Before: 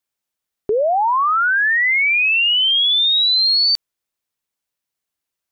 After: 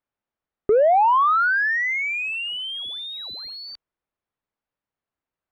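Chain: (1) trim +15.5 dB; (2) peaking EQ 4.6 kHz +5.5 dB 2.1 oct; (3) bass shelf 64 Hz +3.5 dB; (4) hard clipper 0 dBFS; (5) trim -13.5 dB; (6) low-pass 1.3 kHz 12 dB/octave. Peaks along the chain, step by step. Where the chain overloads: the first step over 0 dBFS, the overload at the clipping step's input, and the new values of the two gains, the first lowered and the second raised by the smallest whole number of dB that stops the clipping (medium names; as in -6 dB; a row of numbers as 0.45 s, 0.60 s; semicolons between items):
+3.5 dBFS, +9.0 dBFS, +9.0 dBFS, 0.0 dBFS, -13.5 dBFS, -13.0 dBFS; step 1, 9.0 dB; step 1 +6.5 dB, step 5 -4.5 dB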